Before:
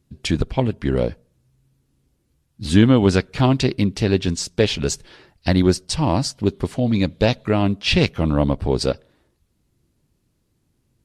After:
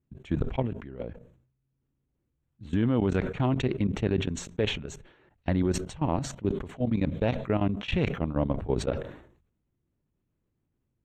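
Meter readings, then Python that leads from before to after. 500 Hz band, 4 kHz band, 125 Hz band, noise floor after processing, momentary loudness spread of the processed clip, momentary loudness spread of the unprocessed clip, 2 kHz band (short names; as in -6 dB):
-9.0 dB, -14.0 dB, -9.0 dB, -79 dBFS, 10 LU, 8 LU, -10.5 dB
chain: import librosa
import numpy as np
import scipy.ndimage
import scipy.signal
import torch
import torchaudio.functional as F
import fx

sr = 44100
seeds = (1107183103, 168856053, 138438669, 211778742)

y = fx.level_steps(x, sr, step_db=18)
y = scipy.signal.lfilter(np.full(9, 1.0 / 9), 1.0, y)
y = fx.sustainer(y, sr, db_per_s=86.0)
y = y * librosa.db_to_amplitude(-6.0)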